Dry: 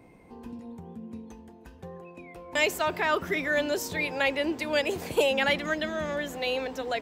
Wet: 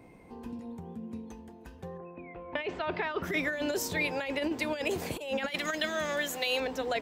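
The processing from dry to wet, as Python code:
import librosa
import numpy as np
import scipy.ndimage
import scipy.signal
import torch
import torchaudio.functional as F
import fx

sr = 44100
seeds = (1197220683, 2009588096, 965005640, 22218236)

y = fx.lowpass(x, sr, hz=fx.line((1.97, 1900.0), (3.22, 5100.0)), slope=24, at=(1.97, 3.22), fade=0.02)
y = fx.tilt_eq(y, sr, slope=2.5, at=(5.48, 6.6))
y = fx.over_compress(y, sr, threshold_db=-28.0, ratio=-0.5)
y = y * librosa.db_to_amplitude(-2.0)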